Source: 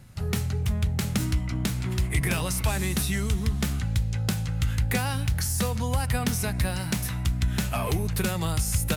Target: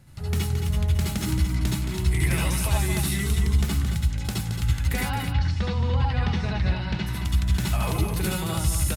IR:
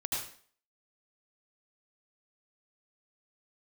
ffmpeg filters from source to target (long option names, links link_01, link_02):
-filter_complex "[0:a]asplit=3[link_01][link_02][link_03];[link_01]afade=type=out:start_time=5:duration=0.02[link_04];[link_02]lowpass=frequency=4200:width=0.5412,lowpass=frequency=4200:width=1.3066,afade=type=in:start_time=5:duration=0.02,afade=type=out:start_time=7.06:duration=0.02[link_05];[link_03]afade=type=in:start_time=7.06:duration=0.02[link_06];[link_04][link_05][link_06]amix=inputs=3:normalize=0,aecho=1:1:221:0.422[link_07];[1:a]atrim=start_sample=2205,atrim=end_sample=4410,asetrate=48510,aresample=44100[link_08];[link_07][link_08]afir=irnorm=-1:irlink=0,volume=-1.5dB"